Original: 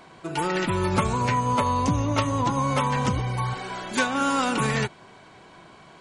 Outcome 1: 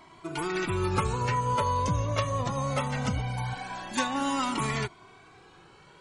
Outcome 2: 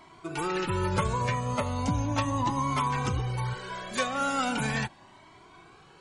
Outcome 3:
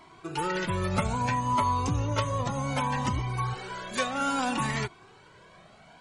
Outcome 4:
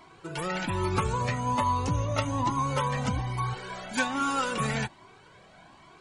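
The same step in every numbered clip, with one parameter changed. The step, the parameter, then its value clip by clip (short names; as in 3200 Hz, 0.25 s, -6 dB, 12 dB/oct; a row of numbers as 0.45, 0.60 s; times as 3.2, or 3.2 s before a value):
cascading flanger, rate: 0.22, 0.38, 0.63, 1.2 Hz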